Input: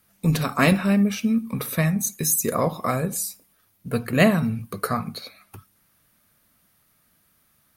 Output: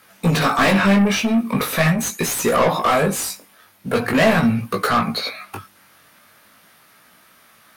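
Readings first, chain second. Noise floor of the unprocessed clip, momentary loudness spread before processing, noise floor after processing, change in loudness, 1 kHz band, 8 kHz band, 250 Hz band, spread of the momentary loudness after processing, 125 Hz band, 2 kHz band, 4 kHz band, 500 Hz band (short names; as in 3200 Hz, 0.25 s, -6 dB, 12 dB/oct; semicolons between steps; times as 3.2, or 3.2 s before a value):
-64 dBFS, 11 LU, -53 dBFS, +4.5 dB, +9.0 dB, +1.0 dB, +3.5 dB, 12 LU, +2.0 dB, +7.5 dB, +9.0 dB, +6.5 dB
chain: overdrive pedal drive 29 dB, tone 2700 Hz, clips at -4.5 dBFS; chorus 0.42 Hz, delay 16.5 ms, depth 4.7 ms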